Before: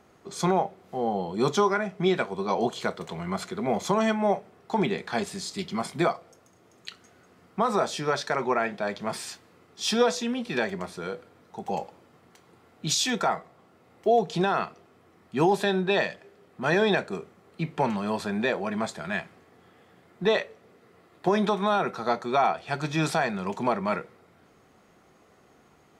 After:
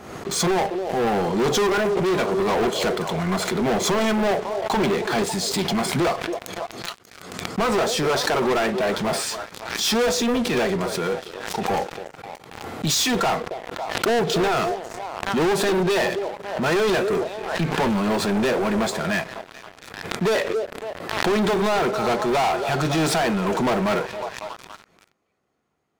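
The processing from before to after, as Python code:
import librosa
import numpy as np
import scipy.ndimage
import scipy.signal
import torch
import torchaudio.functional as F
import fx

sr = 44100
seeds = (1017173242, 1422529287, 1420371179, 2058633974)

p1 = x + fx.echo_stepped(x, sr, ms=276, hz=460.0, octaves=0.7, feedback_pct=70, wet_db=-12.0, dry=0)
p2 = fx.dynamic_eq(p1, sr, hz=390.0, q=1.1, threshold_db=-34.0, ratio=4.0, max_db=5)
p3 = fx.leveller(p2, sr, passes=5)
p4 = 10.0 ** (-20.0 / 20.0) * np.tanh(p3 / 10.0 ** (-20.0 / 20.0))
p5 = p3 + (p4 * 10.0 ** (-5.0 / 20.0))
p6 = fx.transient(p5, sr, attack_db=-4, sustain_db=10, at=(1.69, 2.13))
p7 = fx.pre_swell(p6, sr, db_per_s=56.0)
y = p7 * 10.0 ** (-10.0 / 20.0)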